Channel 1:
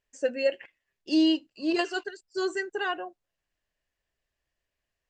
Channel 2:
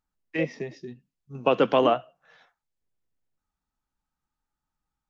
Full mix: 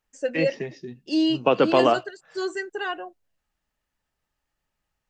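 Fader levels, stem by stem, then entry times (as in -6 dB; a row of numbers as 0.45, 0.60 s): +0.5, +2.0 dB; 0.00, 0.00 s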